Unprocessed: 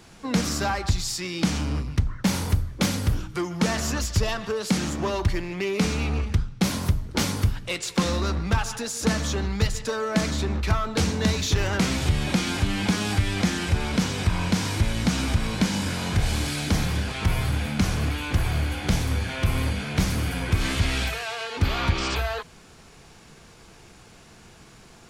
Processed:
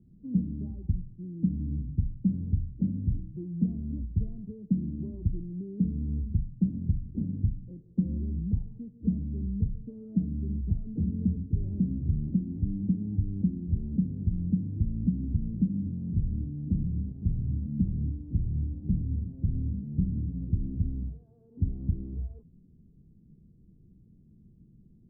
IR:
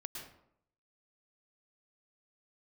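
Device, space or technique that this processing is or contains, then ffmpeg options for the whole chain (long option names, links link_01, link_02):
the neighbour's flat through the wall: -af "lowpass=frequency=270:width=0.5412,lowpass=frequency=270:width=1.3066,equalizer=frequency=180:width_type=o:width=0.77:gain=4,volume=-5.5dB"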